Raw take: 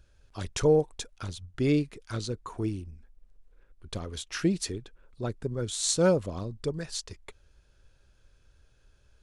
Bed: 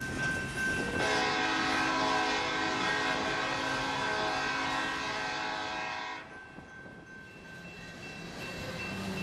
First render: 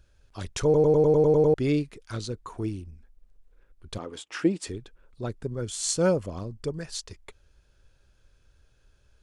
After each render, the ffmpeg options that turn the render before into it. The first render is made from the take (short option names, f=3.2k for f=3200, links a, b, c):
-filter_complex "[0:a]asettb=1/sr,asplit=3[a][b][c];[a]atrim=end=3.984[d];[b]atrim=start=3.98:end=4.67,asetpts=PTS-STARTPTS,afade=t=in:d=0.004:c=qsin,afade=t=out:st=0.686:d=0.004:c=qsin,highpass=190,equalizer=f=300:t=q:w=4:g=7,equalizer=f=500:t=q:w=4:g=5,equalizer=f=860:t=q:w=4:g=6,equalizer=f=1.2k:t=q:w=4:g=3,equalizer=f=4.1k:t=q:w=4:g=-7,equalizer=f=6k:t=q:w=4:g=-7,lowpass=f=8.9k:w=0.5412,lowpass=f=8.9k:w=1.3066[e];[c]atrim=start=4.666[f];[d][e]acrossfade=d=0.004:c1=hsin:c2=qsin[g];[g][f]acrossfade=d=0.004:c1=qsin:c2=hsin,asettb=1/sr,asplit=3[h][i][j];[h]atrim=end=5.584[k];[i]atrim=start=5.58:end=6.89,asetpts=PTS-STARTPTS,afade=t=in:d=0.004:c=qsin,afade=t=out:st=1.306:d=0.004:c=qsin,bandreject=f=3.8k:w=6.3[l];[j]atrim=start=6.886[m];[k][l]acrossfade=d=0.004:c1=hsin:c2=qsin[n];[n][m]acrossfade=d=0.004:c1=qsin:c2=hsin,asplit=10[o][p][q][r][s][t][u][v][w][x];[o]atrim=end=0.742[y];[p]atrim=start=0.638:end=0.742[z];[q]atrim=start=0.638:end=0.742[aa];[r]atrim=start=0.638:end=0.742[ab];[s]atrim=start=0.638:end=0.742[ac];[t]atrim=start=0.638:end=0.742[ad];[u]atrim=start=0.638:end=0.742[ae];[v]atrim=start=0.638:end=0.742[af];[w]atrim=start=0.638:end=0.742[ag];[x]atrim=start=1.538[ah];[y][z]acrossfade=d=0.004:c1=hsin:c2=hsin[ai];[ai][aa]acrossfade=d=0.004:c1=hsin:c2=hsin[aj];[aj][ab]acrossfade=d=0.004:c1=hsin:c2=hsin[ak];[ak][ac]acrossfade=d=0.004:c1=hsin:c2=hsin[al];[al][ad]acrossfade=d=0.004:c1=hsin:c2=hsin[am];[am][ae]acrossfade=d=0.004:c1=hsin:c2=hsin[an];[an][af]acrossfade=d=0.004:c1=hsin:c2=hsin[ao];[ao][ag]acrossfade=d=0.004:c1=hsin:c2=hsin[ap];[ap][ah]acrossfade=d=0.004:c1=hsin:c2=hsin"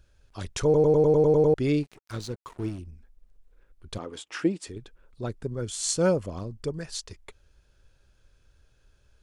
-filter_complex "[0:a]asettb=1/sr,asplit=3[a][b][c];[a]atrim=end=1.834[d];[b]atrim=start=1.83:end=2.79,asetpts=PTS-STARTPTS,afade=t=in:d=0.004:c=qsin,afade=t=out:st=0.956:d=0.004:c=qsin,aeval=exprs='sgn(val(0))*max(abs(val(0))-0.00501,0)':c=same[e];[c]atrim=start=2.786[f];[d][e]acrossfade=d=0.004:c1=hsin:c2=qsin[g];[g][f]acrossfade=d=0.004:c1=qsin:c2=hsin,asplit=2[h][i];[h]atrim=end=4.76,asetpts=PTS-STARTPTS,afade=t=out:st=4.34:d=0.42:silence=0.501187[j];[i]atrim=start=4.76,asetpts=PTS-STARTPTS,afade=t=in:d=0.004:c=hsin:silence=0.501187[k];[j][k]concat=n=2:v=0:a=1"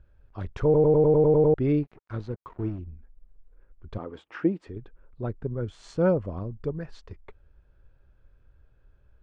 -af "lowpass=1.6k,lowshelf=f=140:g=4"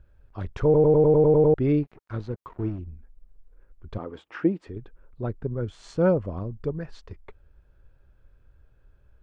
-af "volume=1.5dB"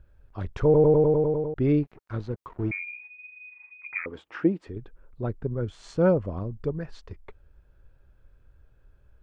-filter_complex "[0:a]asettb=1/sr,asplit=3[a][b][c];[a]atrim=end=2.714[d];[b]atrim=start=2.71:end=4.06,asetpts=PTS-STARTPTS,afade=t=in:d=0.004:c=qsin,afade=t=out:st=1.346:d=0.004:c=qsin,lowpass=f=2.1k:t=q:w=0.5098,lowpass=f=2.1k:t=q:w=0.6013,lowpass=f=2.1k:t=q:w=0.9,lowpass=f=2.1k:t=q:w=2.563,afreqshift=-2500[e];[c]atrim=start=4.056[f];[d][e]acrossfade=d=0.004:c1=hsin:c2=qsin[g];[g][f]acrossfade=d=0.004:c1=qsin:c2=hsin,asplit=2[h][i];[h]atrim=end=1.56,asetpts=PTS-STARTPTS,afade=t=out:st=0.87:d=0.69:silence=0.149624[j];[i]atrim=start=1.56,asetpts=PTS-STARTPTS,afade=t=in:d=0.004:c=hsin:silence=0.149624[k];[j][k]concat=n=2:v=0:a=1"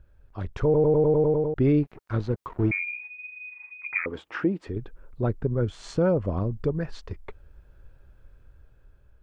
-af "dynaudnorm=f=560:g=5:m=5.5dB,alimiter=limit=-13.5dB:level=0:latency=1:release=179"